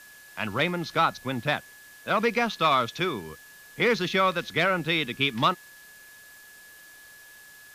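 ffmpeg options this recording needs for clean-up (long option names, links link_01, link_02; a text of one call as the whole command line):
ffmpeg -i in.wav -af "bandreject=frequency=1700:width=30,afwtdn=0.0025" out.wav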